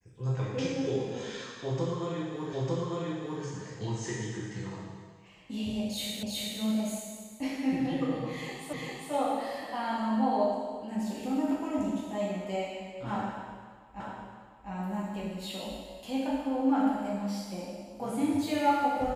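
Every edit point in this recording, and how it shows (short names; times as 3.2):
2.53 repeat of the last 0.9 s
6.23 repeat of the last 0.37 s
8.73 repeat of the last 0.4 s
14 repeat of the last 0.7 s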